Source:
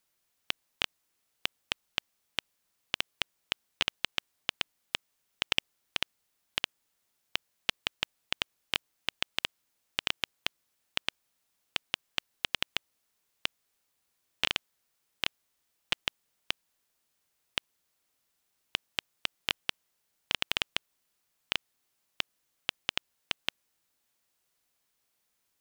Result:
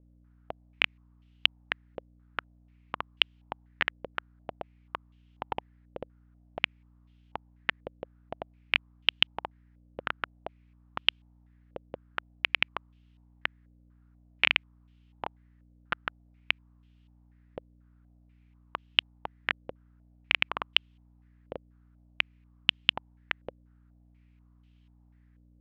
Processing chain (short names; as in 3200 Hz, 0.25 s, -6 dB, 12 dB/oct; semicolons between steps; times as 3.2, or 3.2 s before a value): hum 60 Hz, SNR 21 dB; stepped low-pass 4.1 Hz 530–3000 Hz